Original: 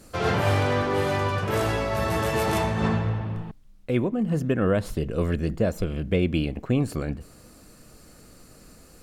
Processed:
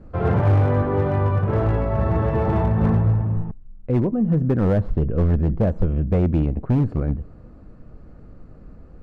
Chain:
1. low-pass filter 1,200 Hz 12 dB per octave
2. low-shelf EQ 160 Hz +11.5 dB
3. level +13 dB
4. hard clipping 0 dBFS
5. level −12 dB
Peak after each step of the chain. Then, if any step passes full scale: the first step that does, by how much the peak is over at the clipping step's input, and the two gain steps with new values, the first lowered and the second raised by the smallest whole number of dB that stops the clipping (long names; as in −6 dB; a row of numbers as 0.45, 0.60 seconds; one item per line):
−11.0, −6.5, +6.5, 0.0, −12.0 dBFS
step 3, 6.5 dB
step 3 +6 dB, step 5 −5 dB